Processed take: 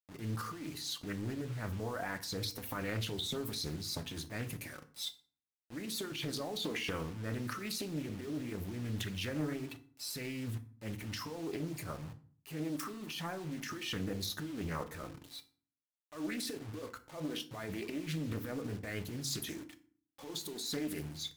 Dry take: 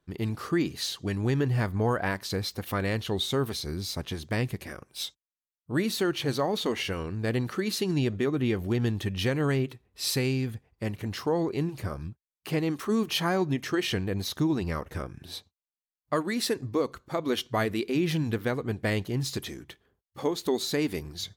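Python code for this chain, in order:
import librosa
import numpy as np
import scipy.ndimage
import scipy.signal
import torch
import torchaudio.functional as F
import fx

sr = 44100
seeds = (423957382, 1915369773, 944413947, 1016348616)

y = fx.bin_expand(x, sr, power=1.5)
y = scipy.signal.sosfilt(scipy.signal.butter(2, 150.0, 'highpass', fs=sr, output='sos'), y)
y = fx.high_shelf(y, sr, hz=6300.0, db=6.0)
y = fx.over_compress(y, sr, threshold_db=-35.0, ratio=-1.0)
y = fx.transient(y, sr, attack_db=-7, sustain_db=10)
y = fx.quant_dither(y, sr, seeds[0], bits=8, dither='none')
y = fx.rev_fdn(y, sr, rt60_s=0.46, lf_ratio=1.45, hf_ratio=0.7, size_ms=20.0, drr_db=7.0)
y = fx.doppler_dist(y, sr, depth_ms=0.46)
y = y * 10.0 ** (-4.5 / 20.0)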